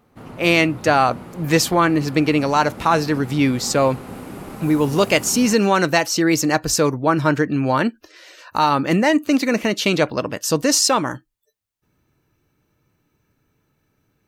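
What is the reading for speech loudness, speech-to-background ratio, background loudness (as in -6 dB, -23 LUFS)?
-18.5 LUFS, 17.5 dB, -36.0 LUFS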